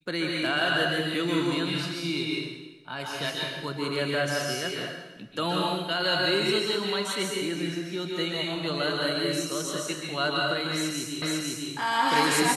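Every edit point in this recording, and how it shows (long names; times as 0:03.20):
0:11.22: the same again, the last 0.5 s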